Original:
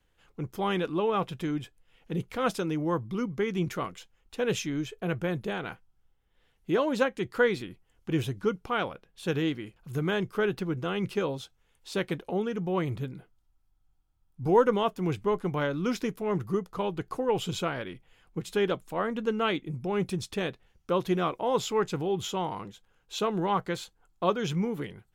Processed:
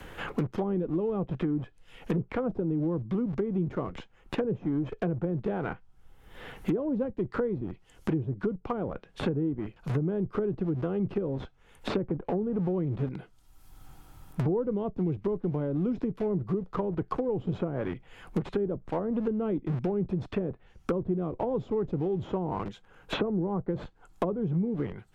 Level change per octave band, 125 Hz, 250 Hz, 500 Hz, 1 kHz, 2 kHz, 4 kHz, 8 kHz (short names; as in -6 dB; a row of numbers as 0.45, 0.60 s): +2.5 dB, +2.0 dB, -2.0 dB, -7.0 dB, -9.5 dB, -10.0 dB, under -15 dB